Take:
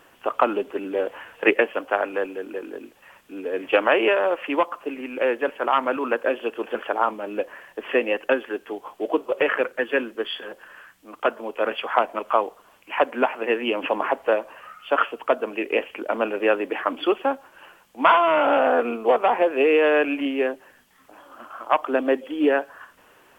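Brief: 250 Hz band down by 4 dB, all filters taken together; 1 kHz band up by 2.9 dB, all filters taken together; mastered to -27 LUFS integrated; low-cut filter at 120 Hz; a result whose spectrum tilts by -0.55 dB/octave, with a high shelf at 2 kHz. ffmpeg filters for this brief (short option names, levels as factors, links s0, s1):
-af "highpass=120,equalizer=f=250:t=o:g=-5.5,equalizer=f=1000:t=o:g=6,highshelf=f=2000:g=-8.5,volume=0.631"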